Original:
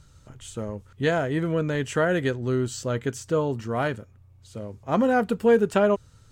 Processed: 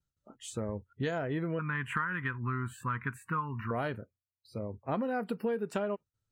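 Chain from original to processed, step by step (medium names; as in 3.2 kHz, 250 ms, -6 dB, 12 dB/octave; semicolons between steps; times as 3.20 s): gate with hold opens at -43 dBFS; spectral noise reduction 29 dB; 1.59–3.71 s: FFT filter 200 Hz 0 dB, 700 Hz -24 dB, 1 kHz +14 dB, 2.5 kHz +3 dB, 5.5 kHz -30 dB, 9.1 kHz -4 dB; compression 6:1, threshold -28 dBFS, peak gain reduction 13.5 dB; trim -2 dB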